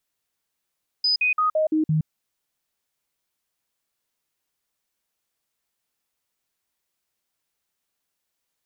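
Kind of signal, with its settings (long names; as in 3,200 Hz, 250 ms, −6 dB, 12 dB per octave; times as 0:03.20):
stepped sweep 4,990 Hz down, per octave 1, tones 6, 0.12 s, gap 0.05 s −17.5 dBFS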